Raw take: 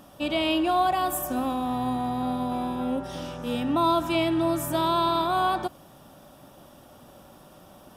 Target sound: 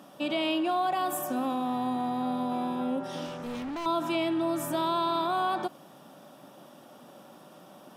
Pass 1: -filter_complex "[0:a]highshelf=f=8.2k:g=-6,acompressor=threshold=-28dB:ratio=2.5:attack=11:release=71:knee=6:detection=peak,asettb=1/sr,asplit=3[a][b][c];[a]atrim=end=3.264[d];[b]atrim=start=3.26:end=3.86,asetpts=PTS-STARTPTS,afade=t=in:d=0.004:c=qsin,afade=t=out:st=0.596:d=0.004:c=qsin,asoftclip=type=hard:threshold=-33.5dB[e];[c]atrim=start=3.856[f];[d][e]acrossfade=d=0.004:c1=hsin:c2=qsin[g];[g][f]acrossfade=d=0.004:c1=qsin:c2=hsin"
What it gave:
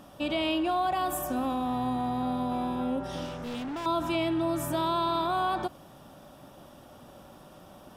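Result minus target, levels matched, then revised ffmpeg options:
125 Hz band +5.5 dB
-filter_complex "[0:a]highshelf=f=8.2k:g=-6,acompressor=threshold=-28dB:ratio=2.5:attack=11:release=71:knee=6:detection=peak,highpass=f=160:w=0.5412,highpass=f=160:w=1.3066,asettb=1/sr,asplit=3[a][b][c];[a]atrim=end=3.264[d];[b]atrim=start=3.26:end=3.86,asetpts=PTS-STARTPTS,afade=t=in:d=0.004:c=qsin,afade=t=out:st=0.596:d=0.004:c=qsin,asoftclip=type=hard:threshold=-33.5dB[e];[c]atrim=start=3.856[f];[d][e]acrossfade=d=0.004:c1=hsin:c2=qsin[g];[g][f]acrossfade=d=0.004:c1=qsin:c2=hsin"

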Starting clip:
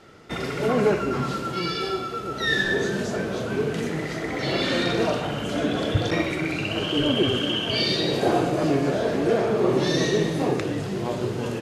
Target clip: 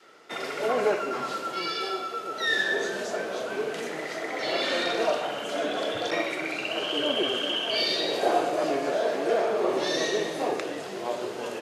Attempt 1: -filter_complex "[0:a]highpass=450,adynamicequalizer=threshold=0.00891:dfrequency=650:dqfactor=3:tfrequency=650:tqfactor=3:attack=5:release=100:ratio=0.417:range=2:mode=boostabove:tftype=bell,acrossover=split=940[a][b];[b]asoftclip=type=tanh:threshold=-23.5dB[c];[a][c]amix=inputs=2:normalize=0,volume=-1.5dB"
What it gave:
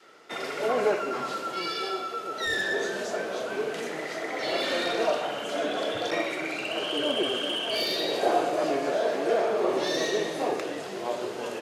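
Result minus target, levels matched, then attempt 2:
soft clip: distortion +16 dB
-filter_complex "[0:a]highpass=450,adynamicequalizer=threshold=0.00891:dfrequency=650:dqfactor=3:tfrequency=650:tqfactor=3:attack=5:release=100:ratio=0.417:range=2:mode=boostabove:tftype=bell,acrossover=split=940[a][b];[b]asoftclip=type=tanh:threshold=-12.5dB[c];[a][c]amix=inputs=2:normalize=0,volume=-1.5dB"

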